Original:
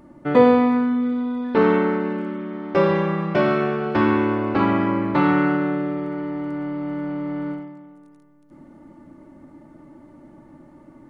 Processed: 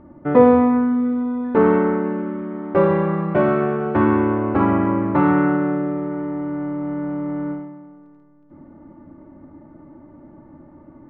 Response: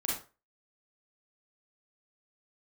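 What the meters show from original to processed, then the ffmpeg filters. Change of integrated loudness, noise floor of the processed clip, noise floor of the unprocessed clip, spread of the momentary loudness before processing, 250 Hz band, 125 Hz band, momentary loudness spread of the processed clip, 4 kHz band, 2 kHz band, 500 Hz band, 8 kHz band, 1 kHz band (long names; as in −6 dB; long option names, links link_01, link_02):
+2.0 dB, −47 dBFS, −49 dBFS, 11 LU, +2.0 dB, +2.5 dB, 11 LU, below −10 dB, −2.0 dB, +2.0 dB, can't be measured, +1.0 dB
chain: -af "lowpass=1500,equalizer=frequency=83:width=5.2:gain=11,volume=2dB"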